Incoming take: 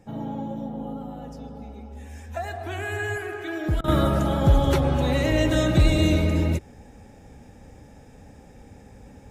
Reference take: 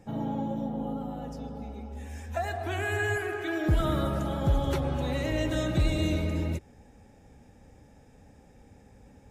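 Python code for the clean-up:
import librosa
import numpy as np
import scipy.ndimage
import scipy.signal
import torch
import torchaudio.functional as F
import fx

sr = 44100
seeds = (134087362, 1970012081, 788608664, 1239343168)

y = fx.fix_interpolate(x, sr, at_s=(3.81,), length_ms=29.0)
y = fx.fix_level(y, sr, at_s=3.88, step_db=-7.5)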